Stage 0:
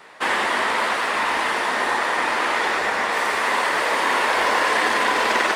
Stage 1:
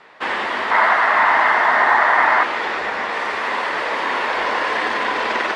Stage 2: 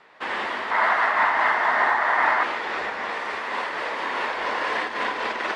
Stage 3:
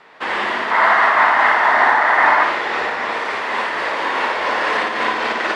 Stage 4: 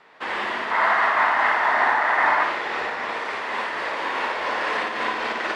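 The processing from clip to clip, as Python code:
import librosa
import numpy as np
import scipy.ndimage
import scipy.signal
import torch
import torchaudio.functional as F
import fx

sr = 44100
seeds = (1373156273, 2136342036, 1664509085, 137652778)

y1 = scipy.signal.sosfilt(scipy.signal.butter(2, 4300.0, 'lowpass', fs=sr, output='sos'), x)
y1 = fx.spec_box(y1, sr, start_s=0.71, length_s=1.72, low_hz=600.0, high_hz=2200.0, gain_db=9)
y1 = F.gain(torch.from_numpy(y1), -1.0).numpy()
y2 = fx.am_noise(y1, sr, seeds[0], hz=5.7, depth_pct=60)
y2 = F.gain(torch.from_numpy(y2), -4.0).numpy()
y3 = fx.room_flutter(y2, sr, wall_m=10.0, rt60_s=0.54)
y3 = F.gain(torch.from_numpy(y3), 6.0).numpy()
y4 = fx.rattle_buzz(y3, sr, strikes_db=-38.0, level_db=-24.0)
y4 = F.gain(torch.from_numpy(y4), -6.0).numpy()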